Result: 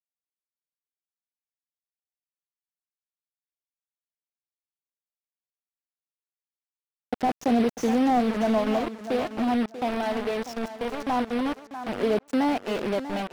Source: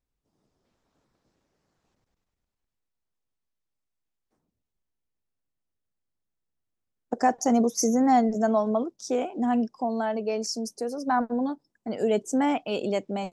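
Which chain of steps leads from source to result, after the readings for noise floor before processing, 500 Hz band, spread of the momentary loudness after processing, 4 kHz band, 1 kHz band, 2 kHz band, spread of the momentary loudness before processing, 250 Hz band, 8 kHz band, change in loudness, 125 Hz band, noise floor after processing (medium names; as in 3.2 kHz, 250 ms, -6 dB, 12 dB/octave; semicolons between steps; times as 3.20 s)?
-83 dBFS, 0.0 dB, 8 LU, +1.0 dB, -1.5 dB, +2.5 dB, 10 LU, 0.0 dB, -12.0 dB, -0.5 dB, no reading, under -85 dBFS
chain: bit crusher 5-bit; tape echo 641 ms, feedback 20%, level -11.5 dB, low-pass 2.2 kHz; slew-rate limiter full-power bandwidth 73 Hz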